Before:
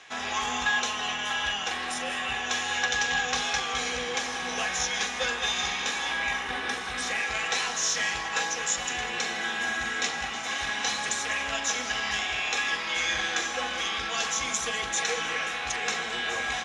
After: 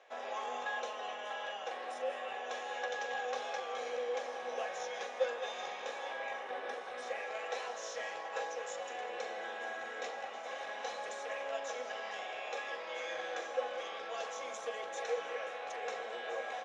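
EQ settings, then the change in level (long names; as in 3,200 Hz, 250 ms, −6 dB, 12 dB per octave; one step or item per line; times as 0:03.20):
resonant band-pass 550 Hz, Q 5.5
spectral tilt +3 dB per octave
+7.0 dB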